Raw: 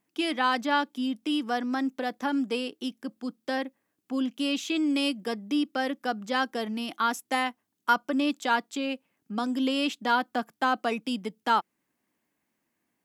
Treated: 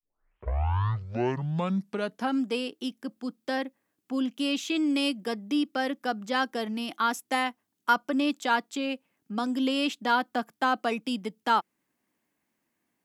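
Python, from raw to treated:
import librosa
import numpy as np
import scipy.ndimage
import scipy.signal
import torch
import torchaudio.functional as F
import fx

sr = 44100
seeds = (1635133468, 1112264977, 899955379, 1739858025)

y = fx.tape_start_head(x, sr, length_s=2.44)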